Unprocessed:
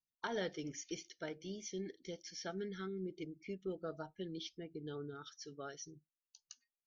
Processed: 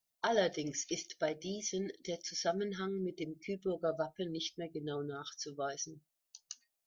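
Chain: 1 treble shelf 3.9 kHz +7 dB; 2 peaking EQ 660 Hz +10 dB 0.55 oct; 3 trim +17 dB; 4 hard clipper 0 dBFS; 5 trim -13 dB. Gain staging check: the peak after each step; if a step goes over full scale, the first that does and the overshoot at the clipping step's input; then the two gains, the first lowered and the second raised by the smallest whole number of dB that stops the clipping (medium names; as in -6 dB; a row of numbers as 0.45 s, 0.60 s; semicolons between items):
-26.0 dBFS, -23.0 dBFS, -6.0 dBFS, -6.0 dBFS, -19.0 dBFS; nothing clips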